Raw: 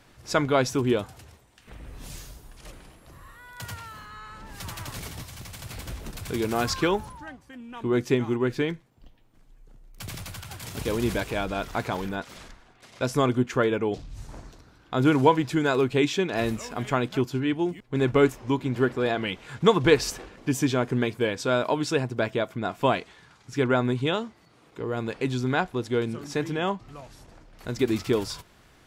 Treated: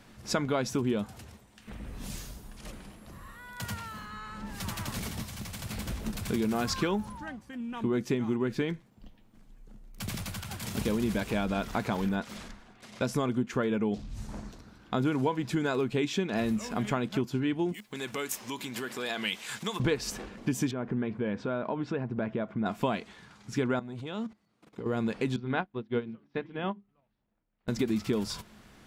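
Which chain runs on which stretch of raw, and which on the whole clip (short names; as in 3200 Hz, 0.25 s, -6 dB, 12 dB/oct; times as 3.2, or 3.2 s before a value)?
17.74–19.8 compressor 5:1, threshold -28 dBFS + tilt +4.5 dB/oct + notch 1400 Hz, Q 30
20.71–22.66 LPF 1900 Hz + compressor 2:1, threshold -33 dBFS
23.79–24.86 level quantiser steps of 19 dB + core saturation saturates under 350 Hz
25.36–27.68 LPF 3600 Hz 24 dB/oct + notches 50/100/150/200/250/300/350/400 Hz + upward expander 2.5:1, over -42 dBFS
whole clip: bell 210 Hz +13.5 dB 0.27 oct; compressor 4:1, threshold -26 dBFS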